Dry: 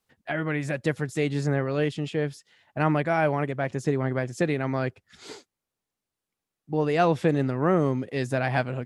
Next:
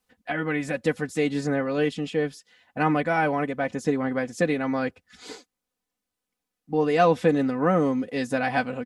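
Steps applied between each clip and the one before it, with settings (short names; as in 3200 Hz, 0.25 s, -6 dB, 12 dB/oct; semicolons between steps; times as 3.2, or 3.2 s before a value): comb 4 ms, depth 70%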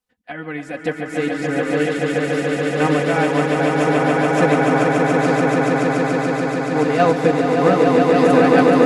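on a send: swelling echo 0.143 s, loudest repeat 8, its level -4 dB; on the sum: upward expander 1.5:1, over -37 dBFS; gain +4 dB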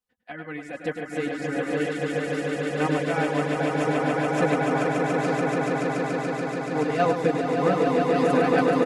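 reverb removal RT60 0.54 s; on a send: echo 0.103 s -8 dB; on the sum: gain -6.5 dB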